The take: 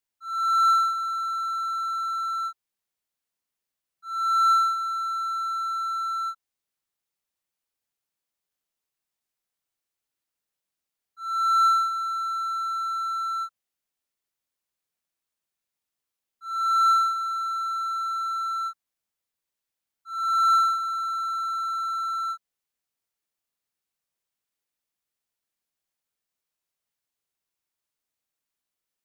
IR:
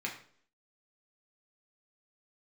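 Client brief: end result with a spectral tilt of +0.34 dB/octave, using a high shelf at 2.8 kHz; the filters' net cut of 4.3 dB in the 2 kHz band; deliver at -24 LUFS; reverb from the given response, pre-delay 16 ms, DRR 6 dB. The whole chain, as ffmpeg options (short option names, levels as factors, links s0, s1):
-filter_complex "[0:a]equalizer=f=2000:t=o:g=-6.5,highshelf=f=2800:g=-8,asplit=2[s0][s1];[1:a]atrim=start_sample=2205,adelay=16[s2];[s1][s2]afir=irnorm=-1:irlink=0,volume=0.335[s3];[s0][s3]amix=inputs=2:normalize=0,volume=1.58"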